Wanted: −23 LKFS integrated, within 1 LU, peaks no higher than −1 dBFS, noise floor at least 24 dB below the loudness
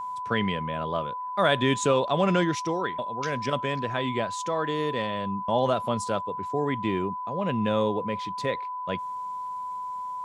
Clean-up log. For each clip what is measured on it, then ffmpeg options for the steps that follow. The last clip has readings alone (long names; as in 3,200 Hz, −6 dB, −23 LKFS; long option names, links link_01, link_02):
interfering tone 1,000 Hz; level of the tone −31 dBFS; integrated loudness −27.5 LKFS; sample peak −9.0 dBFS; target loudness −23.0 LKFS
→ -af "bandreject=frequency=1000:width=30"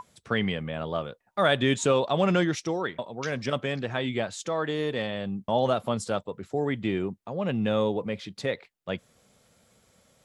interfering tone none found; integrated loudness −28.5 LKFS; sample peak −9.0 dBFS; target loudness −23.0 LKFS
→ -af "volume=5.5dB"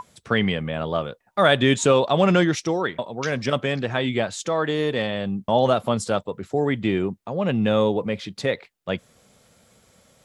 integrated loudness −23.0 LKFS; sample peak −3.5 dBFS; background noise floor −65 dBFS